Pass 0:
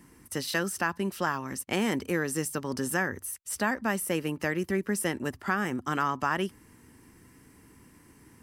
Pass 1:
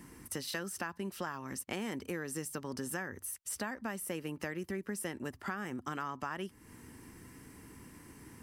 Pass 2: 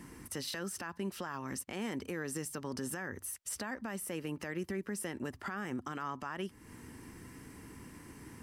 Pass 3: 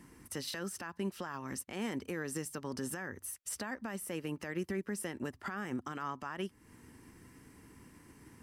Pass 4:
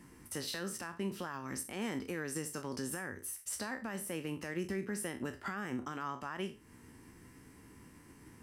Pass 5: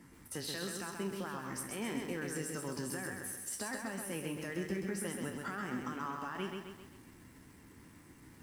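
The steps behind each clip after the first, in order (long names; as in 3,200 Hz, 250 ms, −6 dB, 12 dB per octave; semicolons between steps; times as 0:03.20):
downward compressor 3 to 1, threshold −42 dBFS, peak gain reduction 15 dB; level +2.5 dB
high-shelf EQ 11,000 Hz −6.5 dB; brickwall limiter −31 dBFS, peak gain reduction 10 dB; level +2.5 dB
expander for the loud parts 1.5 to 1, over −51 dBFS; level +2 dB
peak hold with a decay on every bin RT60 0.32 s; level −1 dB
spectral magnitudes quantised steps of 15 dB; feedback echo at a low word length 131 ms, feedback 55%, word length 10 bits, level −4 dB; level −1 dB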